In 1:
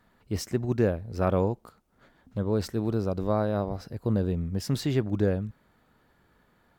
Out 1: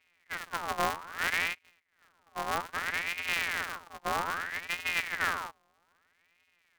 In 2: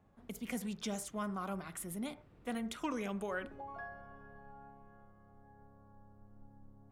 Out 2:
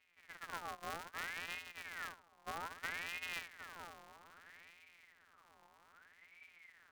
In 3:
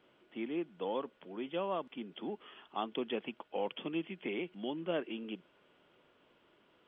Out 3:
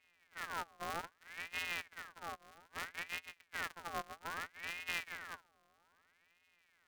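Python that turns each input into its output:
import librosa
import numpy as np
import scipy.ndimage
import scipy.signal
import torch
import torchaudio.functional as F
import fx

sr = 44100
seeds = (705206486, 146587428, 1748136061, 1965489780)

y = np.r_[np.sort(x[:len(x) // 256 * 256].reshape(-1, 256), axis=1).ravel(), x[len(x) // 256 * 256:]]
y = fx.hpss(y, sr, part='percussive', gain_db=-13)
y = fx.ring_lfo(y, sr, carrier_hz=1600.0, swing_pct=45, hz=0.62)
y = F.gain(torch.from_numpy(y), -2.5).numpy()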